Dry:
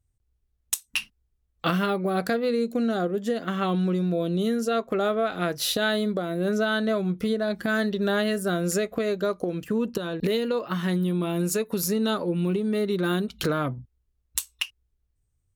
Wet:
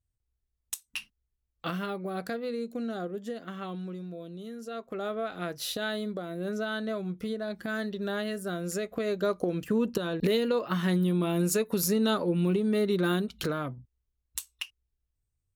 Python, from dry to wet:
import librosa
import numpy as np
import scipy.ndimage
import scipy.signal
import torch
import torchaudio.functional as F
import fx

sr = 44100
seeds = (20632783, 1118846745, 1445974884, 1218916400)

y = fx.gain(x, sr, db=fx.line((3.15, -9.0), (4.43, -17.0), (5.15, -8.0), (8.71, -8.0), (9.35, -1.0), (13.0, -1.0), (13.76, -8.0)))